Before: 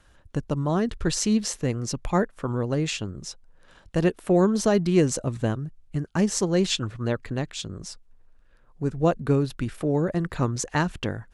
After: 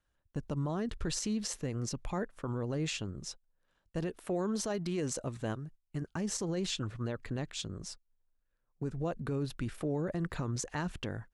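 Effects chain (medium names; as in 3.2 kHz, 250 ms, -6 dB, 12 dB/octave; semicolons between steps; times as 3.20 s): gate -40 dBFS, range -17 dB; 4.18–6.02 s: bass shelf 310 Hz -6 dB; peak limiter -20.5 dBFS, peak gain reduction 11.5 dB; trim -5.5 dB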